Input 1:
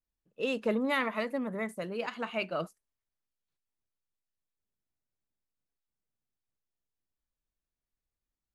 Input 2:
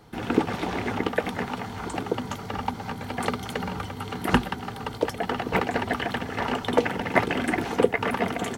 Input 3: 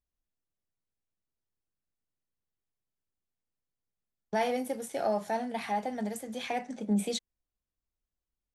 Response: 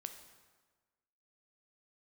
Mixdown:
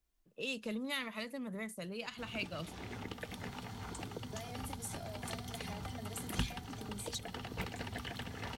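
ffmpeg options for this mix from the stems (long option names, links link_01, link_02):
-filter_complex "[0:a]volume=3dB,asplit=2[link_01][link_02];[1:a]adelay=2050,volume=-9dB,asplit=2[link_03][link_04];[link_04]volume=-5.5dB[link_05];[2:a]aecho=1:1:2.9:0.82,acompressor=threshold=-39dB:ratio=6,volume=2dB[link_06];[link_02]apad=whole_len=468425[link_07];[link_03][link_07]sidechaincompress=threshold=-33dB:ratio=8:attack=16:release=1240[link_08];[3:a]atrim=start_sample=2205[link_09];[link_05][link_09]afir=irnorm=-1:irlink=0[link_10];[link_01][link_08][link_06][link_10]amix=inputs=4:normalize=0,acrossover=split=150|3000[link_11][link_12][link_13];[link_12]acompressor=threshold=-48dB:ratio=3[link_14];[link_11][link_14][link_13]amix=inputs=3:normalize=0"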